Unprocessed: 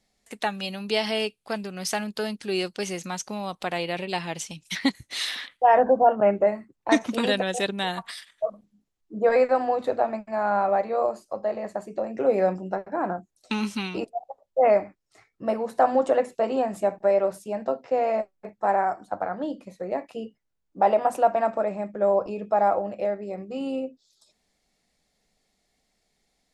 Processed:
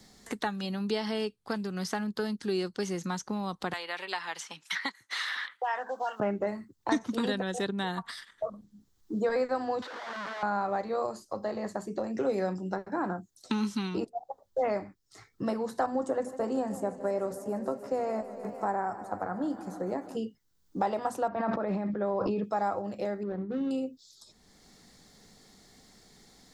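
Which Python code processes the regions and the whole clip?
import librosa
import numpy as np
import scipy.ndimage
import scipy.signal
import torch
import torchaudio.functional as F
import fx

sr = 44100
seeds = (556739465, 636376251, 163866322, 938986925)

y = fx.chain(x, sr, fx.highpass(hz=1100.0, slope=12),
    fx.band_squash(depth_pct=70), at=(3.73, 6.2))
y = fx.chain(y, sr, fx.clip_1bit(),
    fx.bandpass_edges(low_hz=760.0, high_hz=3000.0),
    fx.level_steps(step_db=13), at=(9.82, 10.43))
y = fx.chain(y, sr, fx.peak_eq(hz=3500.0, db=-14.0, octaves=1.5),
    fx.echo_warbled(ms=151, feedback_pct=79, rate_hz=2.8, cents=94, wet_db=-17), at=(15.86, 20.17))
y = fx.chain(y, sr, fx.air_absorb(metres=250.0),
    fx.sustainer(db_per_s=30.0), at=(21.28, 22.44))
y = fx.chain(y, sr, fx.median_filter(points=41),
    fx.lowpass(hz=1300.0, slope=12), at=(23.23, 23.71))
y = fx.graphic_eq_15(y, sr, hz=(100, 630, 2500, 10000), db=(5, -9, -11, -6))
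y = fx.band_squash(y, sr, depth_pct=70)
y = y * librosa.db_to_amplitude(-2.0)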